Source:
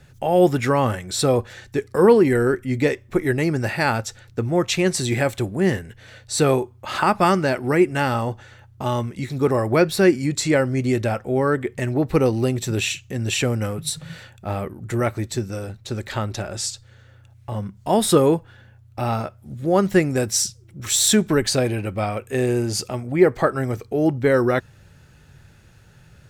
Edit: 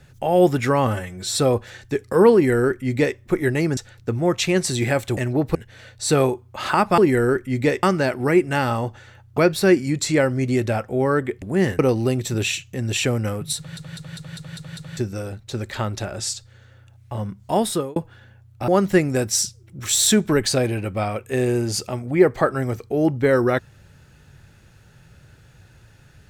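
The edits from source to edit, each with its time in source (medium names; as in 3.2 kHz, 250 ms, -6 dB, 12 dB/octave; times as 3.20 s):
0.87–1.21 s: stretch 1.5×
2.16–3.01 s: copy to 7.27 s
3.60–4.07 s: delete
5.47–5.84 s: swap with 11.78–12.16 s
8.82–9.74 s: delete
13.94 s: stutter in place 0.20 s, 7 plays
17.88–18.33 s: fade out
19.05–19.69 s: delete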